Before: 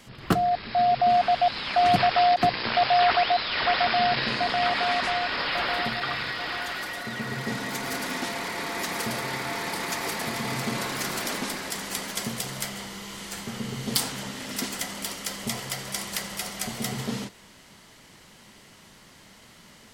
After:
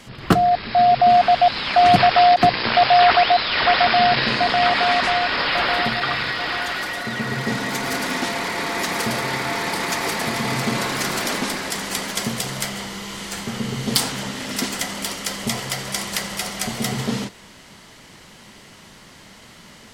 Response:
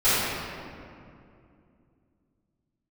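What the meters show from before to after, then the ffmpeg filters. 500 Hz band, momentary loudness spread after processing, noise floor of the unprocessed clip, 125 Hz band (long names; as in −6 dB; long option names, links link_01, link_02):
+7.0 dB, 12 LU, −52 dBFS, +7.0 dB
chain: -af "highshelf=frequency=12000:gain=-7.5,volume=7dB"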